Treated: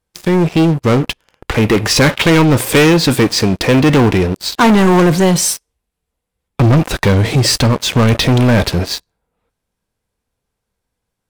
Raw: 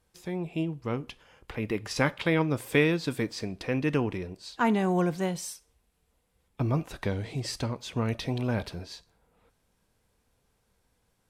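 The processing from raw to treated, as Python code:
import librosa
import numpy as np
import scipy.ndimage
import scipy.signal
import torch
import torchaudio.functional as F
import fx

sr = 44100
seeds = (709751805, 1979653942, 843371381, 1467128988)

y = fx.leveller(x, sr, passes=5)
y = F.gain(torch.from_numpy(y), 5.5).numpy()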